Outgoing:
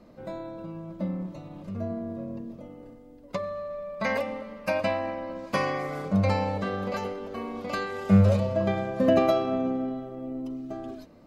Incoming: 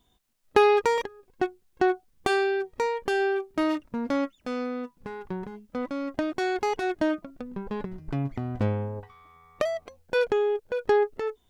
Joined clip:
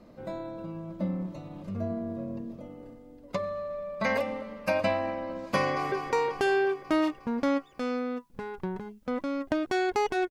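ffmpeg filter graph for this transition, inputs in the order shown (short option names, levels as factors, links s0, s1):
-filter_complex "[0:a]apad=whole_dur=10.3,atrim=end=10.3,atrim=end=5.922[s0];[1:a]atrim=start=2.588:end=6.97[s1];[s0][s1]acrossfade=d=0.004:c1=hsin:c2=hsin,asplit=2[s2][s3];[s3]afade=t=in:st=5.58:d=0.01,afade=t=out:st=5.92:d=0.01,aecho=0:1:180|360|540|720|900|1080|1260|1440|1620|1800|1980|2160:0.473151|0.354863|0.266148|0.199611|0.149708|0.112281|0.0842108|0.0631581|0.0473686|0.0355264|0.0266448|0.0199836[s4];[s2][s4]amix=inputs=2:normalize=0"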